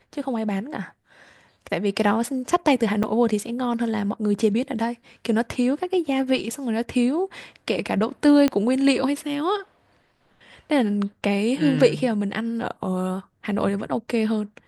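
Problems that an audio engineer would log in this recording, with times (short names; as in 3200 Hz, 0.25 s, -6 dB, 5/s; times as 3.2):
3.03–3.04 gap 5.4 ms
8.48 pop -9 dBFS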